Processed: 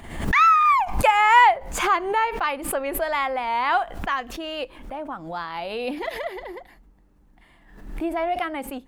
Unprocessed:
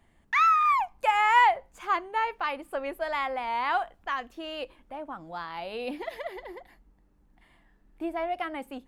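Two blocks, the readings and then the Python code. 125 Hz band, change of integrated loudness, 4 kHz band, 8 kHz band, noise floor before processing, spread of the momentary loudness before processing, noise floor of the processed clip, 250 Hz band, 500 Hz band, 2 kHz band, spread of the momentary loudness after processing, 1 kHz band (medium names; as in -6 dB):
+20.0 dB, +6.0 dB, +6.5 dB, no reading, -64 dBFS, 18 LU, -56 dBFS, +7.5 dB, +7.0 dB, +6.0 dB, 18 LU, +5.5 dB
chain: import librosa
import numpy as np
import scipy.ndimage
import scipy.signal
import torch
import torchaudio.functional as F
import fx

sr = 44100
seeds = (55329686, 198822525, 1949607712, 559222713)

y = fx.pre_swell(x, sr, db_per_s=73.0)
y = y * librosa.db_to_amplitude(5.5)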